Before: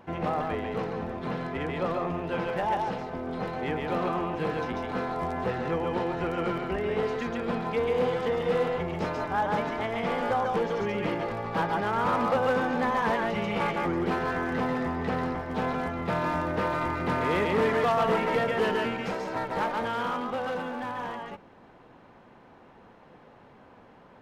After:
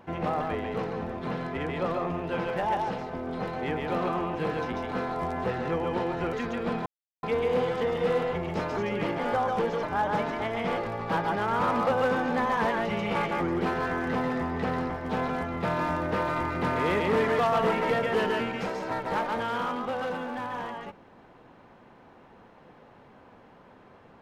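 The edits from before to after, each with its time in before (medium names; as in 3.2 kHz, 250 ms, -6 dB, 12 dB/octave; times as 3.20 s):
6.33–7.15 s: delete
7.68 s: insert silence 0.37 s
9.22–10.16 s: swap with 10.80–11.22 s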